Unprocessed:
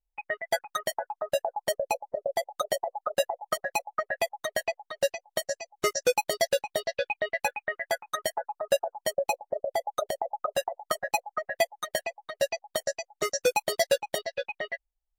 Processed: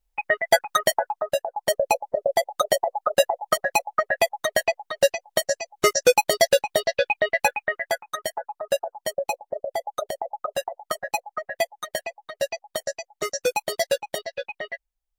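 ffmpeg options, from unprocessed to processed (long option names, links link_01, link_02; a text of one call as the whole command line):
ffmpeg -i in.wav -af "volume=17.5dB,afade=type=out:start_time=0.92:duration=0.54:silence=0.316228,afade=type=in:start_time=1.46:duration=0.34:silence=0.421697,afade=type=out:start_time=7.52:duration=0.59:silence=0.473151" out.wav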